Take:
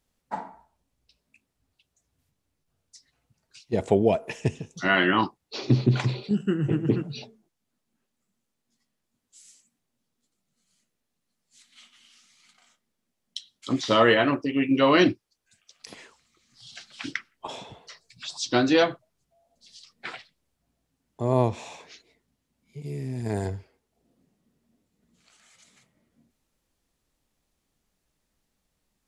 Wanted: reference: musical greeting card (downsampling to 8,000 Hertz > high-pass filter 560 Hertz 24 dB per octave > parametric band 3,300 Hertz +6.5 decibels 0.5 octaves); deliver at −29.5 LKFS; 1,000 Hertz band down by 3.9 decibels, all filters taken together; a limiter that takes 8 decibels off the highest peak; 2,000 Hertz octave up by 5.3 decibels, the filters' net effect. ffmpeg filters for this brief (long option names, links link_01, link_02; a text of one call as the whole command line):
ffmpeg -i in.wav -af "equalizer=frequency=1000:width_type=o:gain=-8.5,equalizer=frequency=2000:width_type=o:gain=8.5,alimiter=limit=-12.5dB:level=0:latency=1,aresample=8000,aresample=44100,highpass=frequency=560:width=0.5412,highpass=frequency=560:width=1.3066,equalizer=frequency=3300:width_type=o:width=0.5:gain=6.5" out.wav